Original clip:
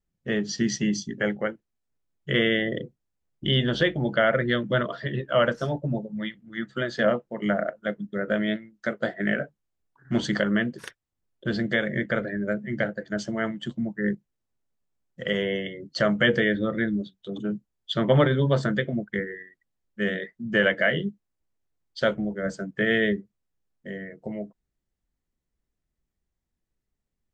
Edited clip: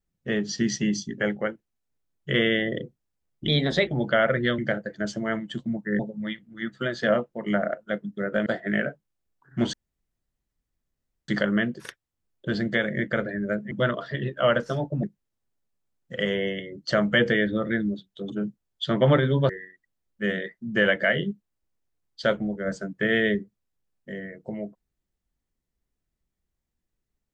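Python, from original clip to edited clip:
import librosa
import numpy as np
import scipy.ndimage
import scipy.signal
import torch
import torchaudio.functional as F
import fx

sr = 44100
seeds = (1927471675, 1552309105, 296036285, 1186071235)

y = fx.edit(x, sr, fx.speed_span(start_s=3.48, length_s=0.44, speed=1.12),
    fx.swap(start_s=4.63, length_s=1.32, other_s=12.7, other_length_s=1.41),
    fx.cut(start_s=8.42, length_s=0.58),
    fx.insert_room_tone(at_s=10.27, length_s=1.55),
    fx.cut(start_s=18.57, length_s=0.7), tone=tone)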